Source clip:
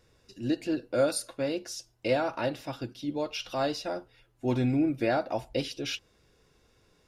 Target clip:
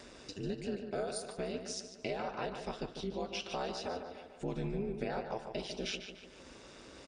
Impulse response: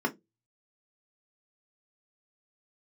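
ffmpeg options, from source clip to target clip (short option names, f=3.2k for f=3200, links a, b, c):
-filter_complex "[0:a]acompressor=mode=upward:threshold=-34dB:ratio=2.5,afftfilt=real='re*between(b*sr/4096,120,9600)':imag='im*between(b*sr/4096,120,9600)':win_size=4096:overlap=0.75,acompressor=threshold=-32dB:ratio=6,aeval=exprs='val(0)*sin(2*PI*100*n/s)':c=same,asplit=2[a][b];[b]adelay=147,lowpass=f=3.8k:p=1,volume=-7.5dB,asplit=2[c][d];[d]adelay=147,lowpass=f=3.8k:p=1,volume=0.54,asplit=2[e][f];[f]adelay=147,lowpass=f=3.8k:p=1,volume=0.54,asplit=2[g][h];[h]adelay=147,lowpass=f=3.8k:p=1,volume=0.54,asplit=2[i][j];[j]adelay=147,lowpass=f=3.8k:p=1,volume=0.54,asplit=2[k][l];[l]adelay=147,lowpass=f=3.8k:p=1,volume=0.54,asplit=2[m][n];[n]adelay=147,lowpass=f=3.8k:p=1,volume=0.54[o];[a][c][e][g][i][k][m][o]amix=inputs=8:normalize=0"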